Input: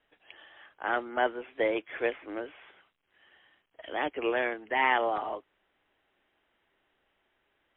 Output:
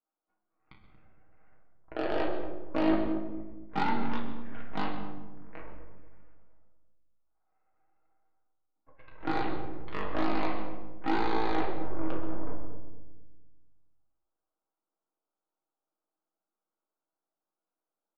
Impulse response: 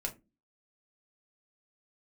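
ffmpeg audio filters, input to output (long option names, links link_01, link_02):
-filter_complex "[0:a]highpass=frequency=600:width=0.5412,highpass=frequency=600:width=1.3066,alimiter=limit=-22.5dB:level=0:latency=1:release=433,aeval=exprs='0.0596*(cos(1*acos(clip(val(0)/0.0596,-1,1)))-cos(1*PI/2))+0.0211*(cos(3*acos(clip(val(0)/0.0596,-1,1)))-cos(3*PI/2))+0.00473*(cos(6*acos(clip(val(0)/0.0596,-1,1)))-cos(6*PI/2))':channel_layout=same,asplit=2[link_01][link_02];[link_02]adelay=99,lowpass=frequency=1100:poles=1,volume=-5dB,asplit=2[link_03][link_04];[link_04]adelay=99,lowpass=frequency=1100:poles=1,volume=0.46,asplit=2[link_05][link_06];[link_06]adelay=99,lowpass=frequency=1100:poles=1,volume=0.46,asplit=2[link_07][link_08];[link_08]adelay=99,lowpass=frequency=1100:poles=1,volume=0.46,asplit=2[link_09][link_10];[link_10]adelay=99,lowpass=frequency=1100:poles=1,volume=0.46,asplit=2[link_11][link_12];[link_12]adelay=99,lowpass=frequency=1100:poles=1,volume=0.46[link_13];[link_01][link_03][link_05][link_07][link_09][link_11][link_13]amix=inputs=7:normalize=0[link_14];[1:a]atrim=start_sample=2205,afade=type=out:start_time=0.24:duration=0.01,atrim=end_sample=11025,asetrate=22932,aresample=44100[link_15];[link_14][link_15]afir=irnorm=-1:irlink=0,asetrate=18846,aresample=44100"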